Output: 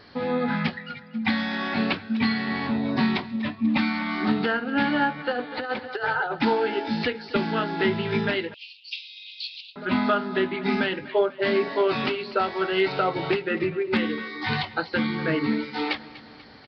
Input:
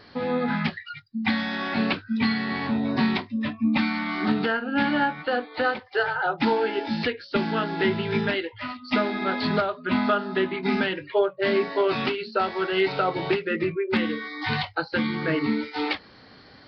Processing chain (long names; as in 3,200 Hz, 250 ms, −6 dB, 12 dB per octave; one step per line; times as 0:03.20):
repeating echo 244 ms, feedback 56%, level −18 dB
0:05.31–0:06.39: compressor whose output falls as the input rises −26 dBFS, ratio −0.5
0:08.54–0:09.76: Butterworth high-pass 2,500 Hz 96 dB per octave